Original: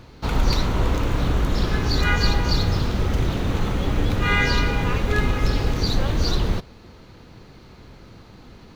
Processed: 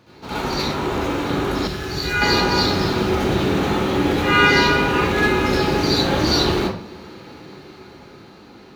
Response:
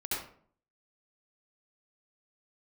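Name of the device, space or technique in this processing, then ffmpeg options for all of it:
far laptop microphone: -filter_complex "[1:a]atrim=start_sample=2205[s0];[0:a][s0]afir=irnorm=-1:irlink=0,highpass=160,dynaudnorm=f=320:g=11:m=3.76,asettb=1/sr,asplit=3[s1][s2][s3];[s1]atrim=end=1.674[s4];[s2]atrim=start=1.67:end=2.22,asetpts=PTS-STARTPTS,afade=t=in:d=0.004:c=qsin,afade=t=out:st=0.546:d=0.004:c=qsin,equalizer=f=250:t=o:w=1:g=-10,equalizer=f=500:t=o:w=1:g=-5,equalizer=f=1000:t=o:w=1:g=-9,equalizer=f=2000:t=o:w=1:g=-3,equalizer=f=4000:t=o:w=1:g=-5[s5];[s3]atrim=start=2.216[s6];[s4][s5]acrossfade=d=0.004:c1=hsin:c2=qsin[s7];[s7][s6]acrossfade=d=0.004:c1=qsin:c2=hsin,volume=0.891"

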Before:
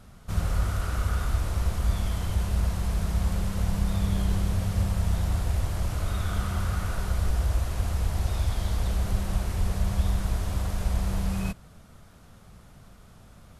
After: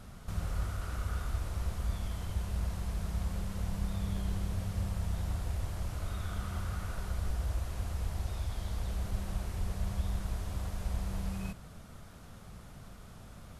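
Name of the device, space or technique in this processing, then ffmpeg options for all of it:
de-esser from a sidechain: -filter_complex "[0:a]asplit=2[s0][s1];[s1]highpass=5500,apad=whole_len=599585[s2];[s0][s2]sidechaincompress=threshold=0.00158:ratio=12:attack=4:release=25,volume=1.12"

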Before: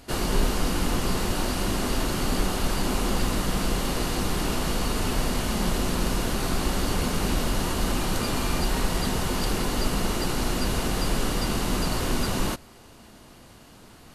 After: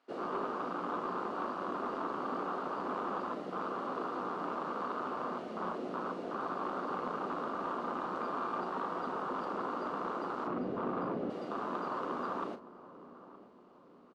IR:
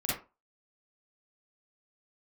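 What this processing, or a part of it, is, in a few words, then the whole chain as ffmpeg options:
intercom: -filter_complex "[0:a]afwtdn=0.0447,highpass=180,asettb=1/sr,asplit=3[s0][s1][s2];[s0]atrim=end=10.474[s3];[s1]atrim=start=10.47:end=11.3,asetpts=PTS-STARTPTS,afade=t=in:d=0.004:c=qsin,afade=t=out:st=0.826:d=0.004:c=qsin,aemphasis=mode=reproduction:type=riaa[s4];[s2]atrim=start=11.296[s5];[s3][s4]acrossfade=d=0.004:c1=hsin:c2=qsin[s6];[s6][s5]acrossfade=d=0.004:c1=qsin:c2=hsin,highpass=310,lowpass=3600,equalizer=f=1200:t=o:w=0.53:g=10,asoftclip=type=tanh:threshold=0.1,asplit=2[s7][s8];[s8]adelay=38,volume=0.299[s9];[s7][s9]amix=inputs=2:normalize=0,asplit=2[s10][s11];[s11]adelay=918,lowpass=f=930:p=1,volume=0.178,asplit=2[s12][s13];[s13]adelay=918,lowpass=f=930:p=1,volume=0.54,asplit=2[s14][s15];[s15]adelay=918,lowpass=f=930:p=1,volume=0.54,asplit=2[s16][s17];[s17]adelay=918,lowpass=f=930:p=1,volume=0.54,asplit=2[s18][s19];[s19]adelay=918,lowpass=f=930:p=1,volume=0.54[s20];[s10][s12][s14][s16][s18][s20]amix=inputs=6:normalize=0,volume=0.501"

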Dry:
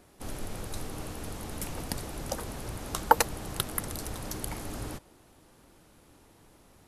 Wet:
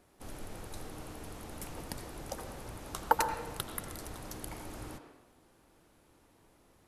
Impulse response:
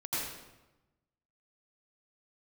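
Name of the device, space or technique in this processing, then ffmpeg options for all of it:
filtered reverb send: -filter_complex "[0:a]asplit=2[s0][s1];[s1]highpass=300,lowpass=3200[s2];[1:a]atrim=start_sample=2205[s3];[s2][s3]afir=irnorm=-1:irlink=0,volume=0.355[s4];[s0][s4]amix=inputs=2:normalize=0,volume=0.422"

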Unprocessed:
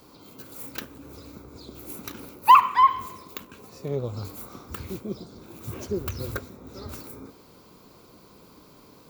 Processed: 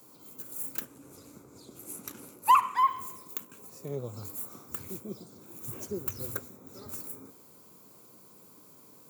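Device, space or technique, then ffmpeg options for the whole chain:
budget condenser microphone: -filter_complex "[0:a]highpass=f=100:w=0.5412,highpass=f=100:w=1.3066,highshelf=f=6000:t=q:w=1.5:g=10,asettb=1/sr,asplit=3[s0][s1][s2];[s0]atrim=end=0.854[s3];[s1]atrim=start=0.85:end=2.77,asetpts=PTS-STARTPTS,afade=t=in:d=0.004:c=qsin,afade=t=out:st=1.916:d=0.004:c=qsin,lowpass=12000[s4];[s2]atrim=start=2.766[s5];[s3][s4]acrossfade=d=0.004:c1=hsin:c2=qsin[s6];[s6][s5]acrossfade=d=0.004:c1=qsin:c2=hsin,volume=0.447"

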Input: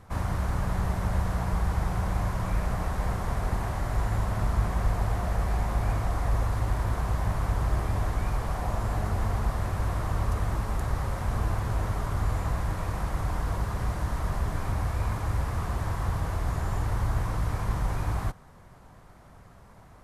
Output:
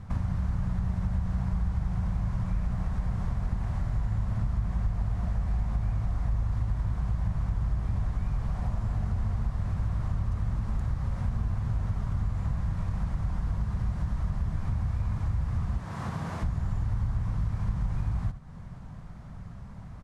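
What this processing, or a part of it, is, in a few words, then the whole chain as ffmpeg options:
jukebox: -filter_complex "[0:a]asettb=1/sr,asplit=3[s0][s1][s2];[s0]atrim=end=15.794[s3];[s1]atrim=start=15.79:end=16.43,asetpts=PTS-STARTPTS,afade=t=in:d=0.004:c=qsin,afade=t=out:st=0.636:d=0.004:c=qsin,highpass=220[s4];[s2]atrim=start=16.426[s5];[s3][s4]acrossfade=d=0.004:c1=hsin:c2=qsin[s6];[s6][s5]acrossfade=d=0.004:c1=qsin:c2=hsin,lowpass=7300,lowshelf=f=260:t=q:w=1.5:g=9.5,aecho=1:1:73:0.178,acompressor=threshold=0.0355:ratio=3"

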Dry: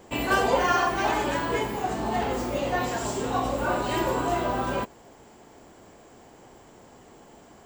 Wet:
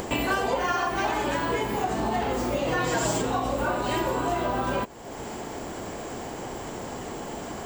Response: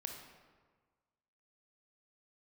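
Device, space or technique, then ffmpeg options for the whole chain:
upward and downward compression: -filter_complex "[0:a]acompressor=mode=upward:threshold=0.02:ratio=2.5,acompressor=threshold=0.0251:ratio=5,asettb=1/sr,asplit=3[s0][s1][s2];[s0]atrim=end=2.674[s3];[s1]atrim=start=2.67:end=3.22,asetpts=PTS-STARTPTS,afade=t=in:d=0.004:c=qsin,afade=t=out:st=0.546:d=0.004:c=qsin,aecho=1:1:6.3:0.96,atrim=end_sample=24255[s4];[s2]atrim=start=3.216[s5];[s3][s4]acrossfade=d=0.004:c1=hsin:c2=qsin[s6];[s6][s5]acrossfade=d=0.004:c1=qsin:c2=hsin,volume=2.51"

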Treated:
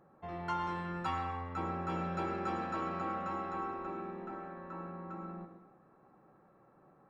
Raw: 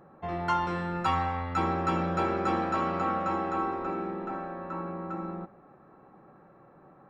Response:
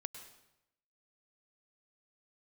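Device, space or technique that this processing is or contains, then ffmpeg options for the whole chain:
bathroom: -filter_complex "[0:a]asettb=1/sr,asplit=3[s0][s1][s2];[s0]atrim=end=1.214[s3];[s1]atrim=start=1.21:end=1.9,asetpts=PTS-STARTPTS,afade=t=in:d=0.004:c=qsin,afade=t=out:st=0.686:d=0.004:c=qsin,equalizer=f=5300:w=0.43:g=-6[s4];[s2]atrim=start=1.896[s5];[s3][s4]acrossfade=d=0.004:c1=hsin:c2=qsin[s6];[s6][s5]acrossfade=d=0.004:c1=qsin:c2=hsin[s7];[1:a]atrim=start_sample=2205[s8];[s7][s8]afir=irnorm=-1:irlink=0,volume=0.531"

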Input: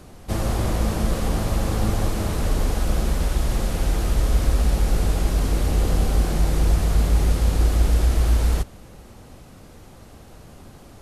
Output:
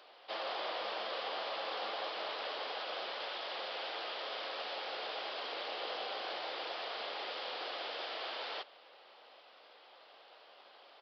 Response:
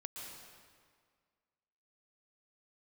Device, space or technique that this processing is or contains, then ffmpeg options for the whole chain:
musical greeting card: -af "aresample=11025,aresample=44100,highpass=f=540:w=0.5412,highpass=f=540:w=1.3066,equalizer=f=3200:t=o:w=0.53:g=7.5,volume=0.447"

